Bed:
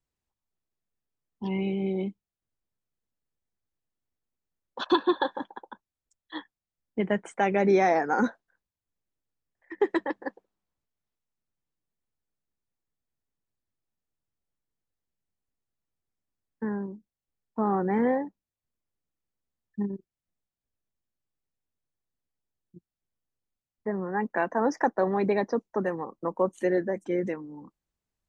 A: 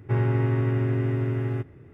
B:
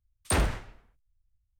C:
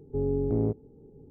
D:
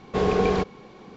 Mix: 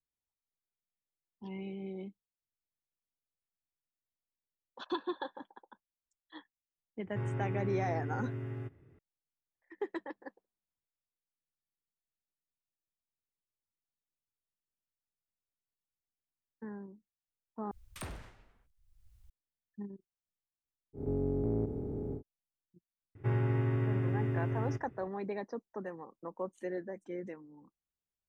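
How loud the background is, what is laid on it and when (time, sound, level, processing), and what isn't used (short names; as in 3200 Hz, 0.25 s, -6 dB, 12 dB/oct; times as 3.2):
bed -13 dB
7.06 add A -13 dB
17.71 replace with B -14.5 dB + three-band squash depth 100%
20.93 add C -7.5 dB, fades 0.10 s + per-bin compression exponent 0.2
23.15 add A -7.5 dB
not used: D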